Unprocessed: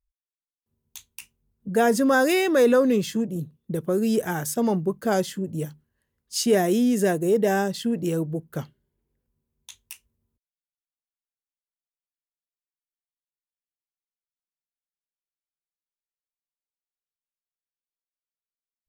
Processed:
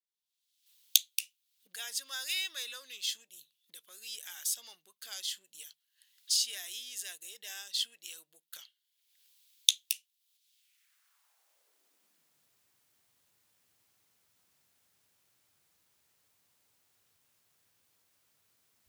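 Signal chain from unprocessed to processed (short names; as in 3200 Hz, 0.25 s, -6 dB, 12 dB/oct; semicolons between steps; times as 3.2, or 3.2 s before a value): recorder AGC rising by 43 dB/s; high-pass sweep 3500 Hz -> 97 Hz, 10.52–12.54; gain -7 dB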